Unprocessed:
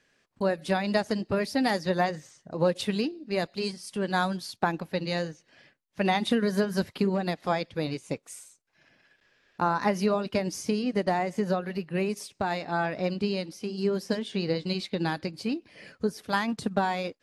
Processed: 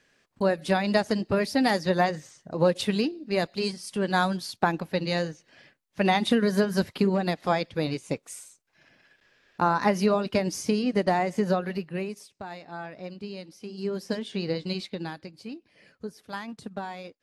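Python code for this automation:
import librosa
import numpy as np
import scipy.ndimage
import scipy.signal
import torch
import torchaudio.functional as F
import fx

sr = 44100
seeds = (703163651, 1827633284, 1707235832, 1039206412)

y = fx.gain(x, sr, db=fx.line((11.7, 2.5), (12.33, -10.0), (13.21, -10.0), (14.16, -1.0), (14.79, -1.0), (15.19, -9.0)))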